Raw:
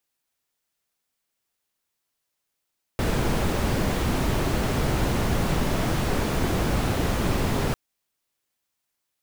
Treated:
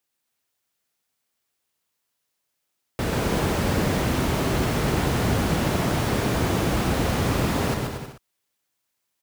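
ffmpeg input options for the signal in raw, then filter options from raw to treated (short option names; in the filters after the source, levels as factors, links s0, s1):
-f lavfi -i "anoisesrc=c=brown:a=0.331:d=4.75:r=44100:seed=1"
-af "highpass=57,aecho=1:1:130|234|317.2|383.8|437:0.631|0.398|0.251|0.158|0.1"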